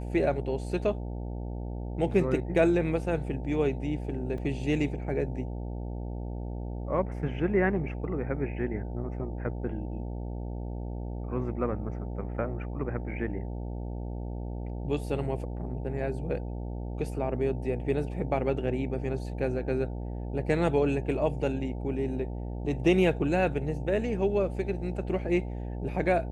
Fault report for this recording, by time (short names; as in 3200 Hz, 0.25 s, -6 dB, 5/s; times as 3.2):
buzz 60 Hz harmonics 15 -35 dBFS
4.38 gap 2.3 ms